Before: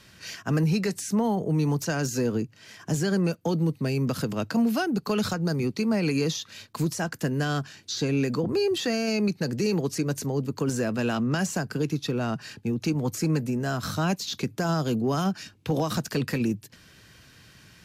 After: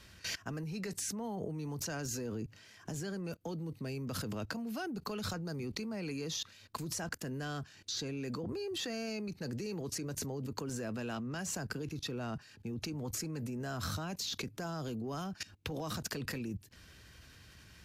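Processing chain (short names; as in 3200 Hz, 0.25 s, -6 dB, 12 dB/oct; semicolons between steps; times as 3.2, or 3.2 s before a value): level quantiser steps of 20 dB; resonant low shelf 100 Hz +6.5 dB, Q 1.5; gain +2 dB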